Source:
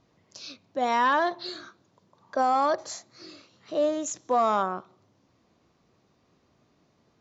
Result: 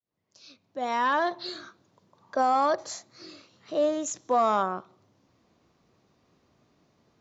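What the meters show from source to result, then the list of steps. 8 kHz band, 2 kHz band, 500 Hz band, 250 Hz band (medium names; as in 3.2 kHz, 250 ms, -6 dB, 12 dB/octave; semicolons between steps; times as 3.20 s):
no reading, -1.5 dB, -0.5 dB, -0.5 dB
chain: fade-in on the opening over 1.41 s; short-mantissa float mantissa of 8-bit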